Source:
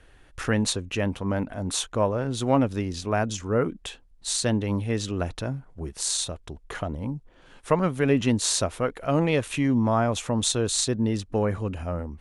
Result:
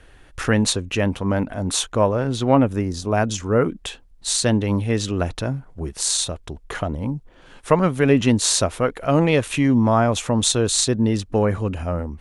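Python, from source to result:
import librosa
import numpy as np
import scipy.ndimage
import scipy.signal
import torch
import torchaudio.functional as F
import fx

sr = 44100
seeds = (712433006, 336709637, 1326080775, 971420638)

y = fx.peak_eq(x, sr, hz=fx.line((2.36, 9900.0), (3.16, 1700.0)), db=-13.0, octaves=0.88, at=(2.36, 3.16), fade=0.02)
y = y * 10.0 ** (5.5 / 20.0)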